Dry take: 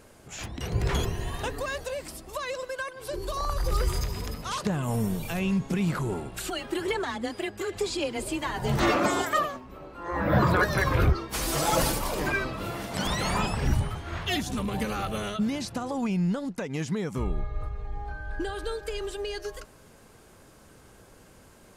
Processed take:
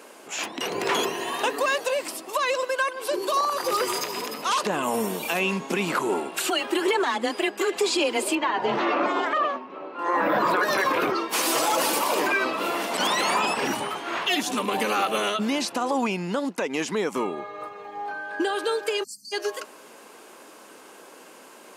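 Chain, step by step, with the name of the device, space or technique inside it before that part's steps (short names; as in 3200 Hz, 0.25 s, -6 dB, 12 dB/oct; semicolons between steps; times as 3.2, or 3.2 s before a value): laptop speaker (HPF 270 Hz 24 dB/oct; bell 1000 Hz +4.5 dB 0.5 oct; bell 2700 Hz +4.5 dB 0.43 oct; limiter -21.5 dBFS, peak gain reduction 11 dB); 8.35–9.99 air absorption 220 m; 19.04–19.32 spectral delete 260–4200 Hz; gain +7.5 dB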